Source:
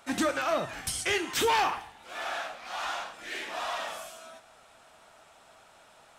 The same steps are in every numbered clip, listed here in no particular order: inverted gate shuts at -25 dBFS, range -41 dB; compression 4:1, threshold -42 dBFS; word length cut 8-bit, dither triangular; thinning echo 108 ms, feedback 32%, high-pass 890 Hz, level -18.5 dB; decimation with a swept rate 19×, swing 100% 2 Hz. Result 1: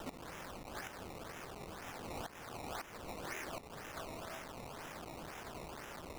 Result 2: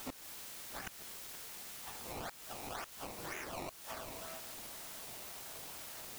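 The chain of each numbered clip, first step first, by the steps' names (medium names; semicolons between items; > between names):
thinning echo > inverted gate > word length cut > decimation with a swept rate > compression; thinning echo > decimation with a swept rate > inverted gate > word length cut > compression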